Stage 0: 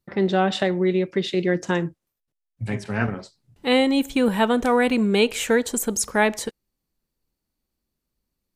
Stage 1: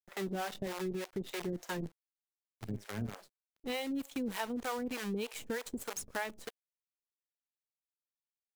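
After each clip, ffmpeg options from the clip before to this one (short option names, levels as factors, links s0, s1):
-filter_complex "[0:a]acrusher=bits=5:dc=4:mix=0:aa=0.000001,acrossover=split=460[s0][s1];[s0]aeval=exprs='val(0)*(1-1/2+1/2*cos(2*PI*3.3*n/s))':c=same[s2];[s1]aeval=exprs='val(0)*(1-1/2-1/2*cos(2*PI*3.3*n/s))':c=same[s3];[s2][s3]amix=inputs=2:normalize=0,acompressor=threshold=0.0631:ratio=6,volume=0.355"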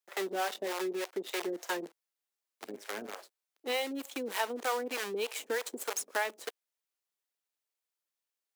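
-af "highpass=f=340:w=0.5412,highpass=f=340:w=1.3066,volume=1.88"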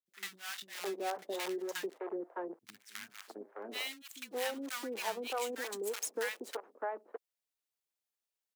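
-filter_complex "[0:a]acrossover=split=180|1300[s0][s1][s2];[s2]adelay=60[s3];[s1]adelay=670[s4];[s0][s4][s3]amix=inputs=3:normalize=0,volume=0.75"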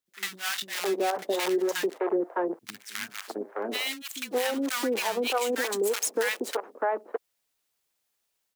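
-af "dynaudnorm=f=160:g=3:m=2,alimiter=level_in=1.06:limit=0.0631:level=0:latency=1:release=52,volume=0.944,volume=2.24"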